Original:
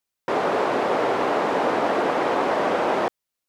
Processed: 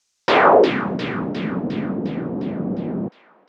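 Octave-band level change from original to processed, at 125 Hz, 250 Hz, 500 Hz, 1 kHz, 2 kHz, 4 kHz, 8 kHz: +12.0 dB, +6.5 dB, +2.0 dB, +1.0 dB, +3.0 dB, +3.5 dB, n/a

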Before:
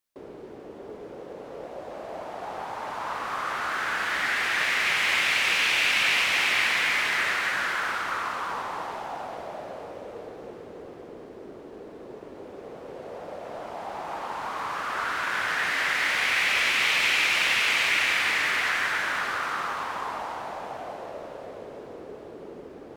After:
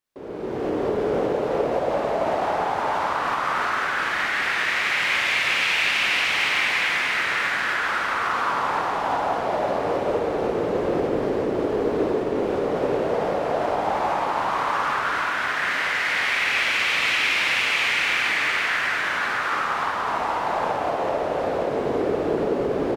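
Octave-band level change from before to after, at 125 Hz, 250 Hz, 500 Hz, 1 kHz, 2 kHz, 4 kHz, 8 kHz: +12.5, +14.5, +14.0, +7.0, +2.5, +1.0, -1.5 dB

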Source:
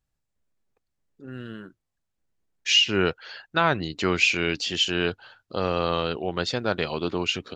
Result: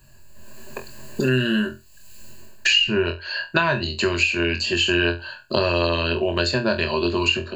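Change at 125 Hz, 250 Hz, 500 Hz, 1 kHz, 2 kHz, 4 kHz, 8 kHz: +6.0, +6.0, +4.5, +1.0, +5.0, +2.5, +0.5 dB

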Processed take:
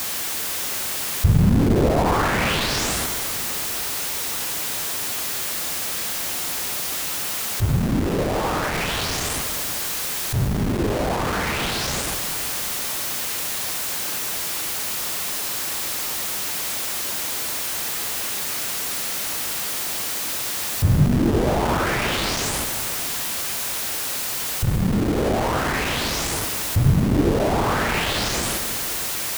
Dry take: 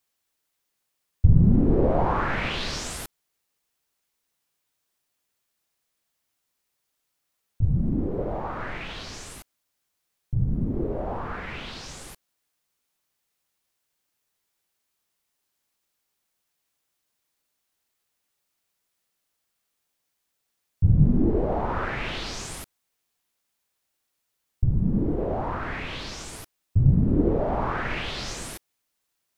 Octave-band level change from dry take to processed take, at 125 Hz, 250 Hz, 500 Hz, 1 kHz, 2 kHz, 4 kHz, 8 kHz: +2.5, +4.0, +6.0, +7.5, +10.5, +14.5, +20.5 dB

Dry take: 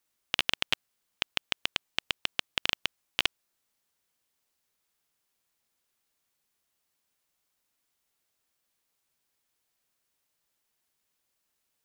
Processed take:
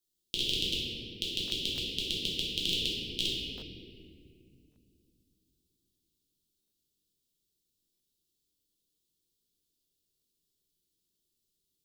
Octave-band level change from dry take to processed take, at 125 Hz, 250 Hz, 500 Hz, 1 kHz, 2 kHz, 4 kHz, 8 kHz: +8.0 dB, +7.5 dB, +2.0 dB, under -25 dB, -9.0 dB, +1.5 dB, +1.5 dB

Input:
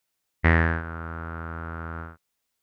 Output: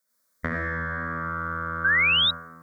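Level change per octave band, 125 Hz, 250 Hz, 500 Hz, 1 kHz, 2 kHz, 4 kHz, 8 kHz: -7.5 dB, -4.5 dB, -3.0 dB, +3.0 dB, +6.0 dB, +26.0 dB, n/a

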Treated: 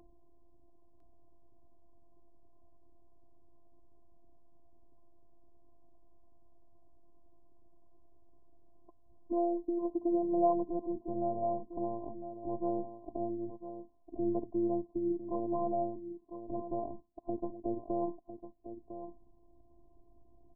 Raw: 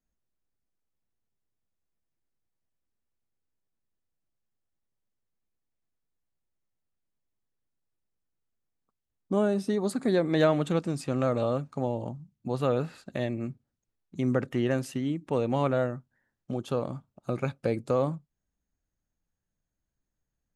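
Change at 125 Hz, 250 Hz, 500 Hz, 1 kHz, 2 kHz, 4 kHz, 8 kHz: -18.5 dB, -4.5 dB, -7.0 dB, -1.5 dB, under -40 dB, under -35 dB, under -30 dB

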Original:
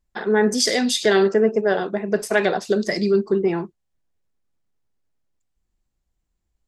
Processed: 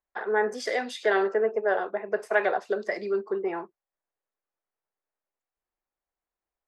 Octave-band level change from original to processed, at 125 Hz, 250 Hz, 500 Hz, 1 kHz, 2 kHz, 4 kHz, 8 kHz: under -20 dB, -15.0 dB, -7.0 dB, -2.5 dB, -4.0 dB, -16.0 dB, under -15 dB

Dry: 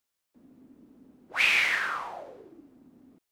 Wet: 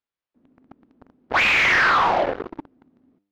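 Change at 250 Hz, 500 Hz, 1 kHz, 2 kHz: +15.0, +18.5, +16.0, +7.5 dB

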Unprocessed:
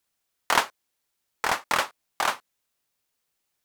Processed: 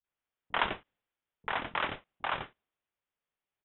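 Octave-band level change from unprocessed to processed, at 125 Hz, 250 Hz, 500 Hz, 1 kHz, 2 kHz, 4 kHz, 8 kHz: 0.0 dB, -3.0 dB, -6.5 dB, -8.0 dB, -7.0 dB, -8.0 dB, under -40 dB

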